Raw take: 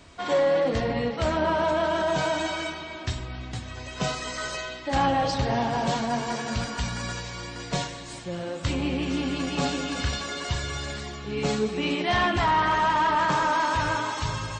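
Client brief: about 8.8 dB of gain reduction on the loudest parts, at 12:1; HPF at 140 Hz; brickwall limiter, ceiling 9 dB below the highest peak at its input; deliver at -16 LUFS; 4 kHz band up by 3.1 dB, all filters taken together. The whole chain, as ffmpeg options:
-af "highpass=140,equalizer=f=4000:t=o:g=4,acompressor=threshold=0.0398:ratio=12,volume=7.94,alimiter=limit=0.398:level=0:latency=1"

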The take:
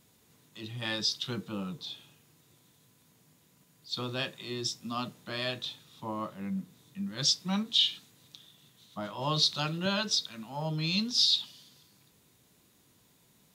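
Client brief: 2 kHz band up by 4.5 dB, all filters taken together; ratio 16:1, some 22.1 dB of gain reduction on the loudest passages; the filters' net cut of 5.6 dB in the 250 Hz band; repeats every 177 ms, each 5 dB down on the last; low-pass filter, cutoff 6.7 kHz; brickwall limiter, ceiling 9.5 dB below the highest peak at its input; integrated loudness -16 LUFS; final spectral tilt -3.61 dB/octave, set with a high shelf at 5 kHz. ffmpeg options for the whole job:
-af "lowpass=6700,equalizer=f=250:t=o:g=-8.5,equalizer=f=2000:t=o:g=5.5,highshelf=f=5000:g=4.5,acompressor=threshold=0.00891:ratio=16,alimiter=level_in=3.98:limit=0.0631:level=0:latency=1,volume=0.251,aecho=1:1:177|354|531|708|885|1062|1239:0.562|0.315|0.176|0.0988|0.0553|0.031|0.0173,volume=29.9"

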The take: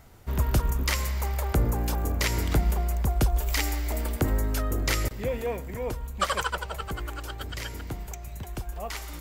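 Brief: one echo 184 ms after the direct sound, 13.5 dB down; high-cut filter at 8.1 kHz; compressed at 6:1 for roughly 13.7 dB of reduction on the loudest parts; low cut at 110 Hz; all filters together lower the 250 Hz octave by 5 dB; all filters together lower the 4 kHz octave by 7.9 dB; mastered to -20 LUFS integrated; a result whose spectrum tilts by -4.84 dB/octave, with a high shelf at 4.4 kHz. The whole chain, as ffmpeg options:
-af "highpass=110,lowpass=8100,equalizer=f=250:t=o:g=-6.5,equalizer=f=4000:t=o:g=-8.5,highshelf=f=4400:g=-4,acompressor=threshold=0.0112:ratio=6,aecho=1:1:184:0.211,volume=15"

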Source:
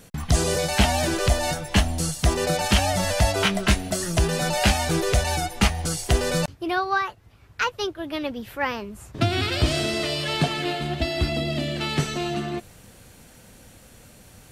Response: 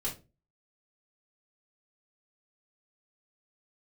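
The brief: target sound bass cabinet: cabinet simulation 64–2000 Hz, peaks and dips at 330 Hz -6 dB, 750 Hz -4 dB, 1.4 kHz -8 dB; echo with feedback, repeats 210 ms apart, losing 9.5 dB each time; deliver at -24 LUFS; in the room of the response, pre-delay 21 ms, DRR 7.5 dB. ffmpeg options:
-filter_complex "[0:a]aecho=1:1:210|420|630|840:0.335|0.111|0.0365|0.012,asplit=2[s0][s1];[1:a]atrim=start_sample=2205,adelay=21[s2];[s1][s2]afir=irnorm=-1:irlink=0,volume=0.299[s3];[s0][s3]amix=inputs=2:normalize=0,highpass=f=64:w=0.5412,highpass=f=64:w=1.3066,equalizer=f=330:t=q:w=4:g=-6,equalizer=f=750:t=q:w=4:g=-4,equalizer=f=1400:t=q:w=4:g=-8,lowpass=f=2000:w=0.5412,lowpass=f=2000:w=1.3066,volume=1.33"

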